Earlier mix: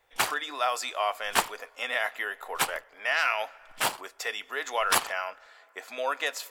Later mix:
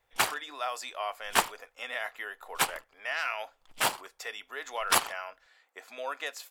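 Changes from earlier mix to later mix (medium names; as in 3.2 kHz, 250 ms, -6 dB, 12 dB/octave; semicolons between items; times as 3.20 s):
speech -6.0 dB; reverb: off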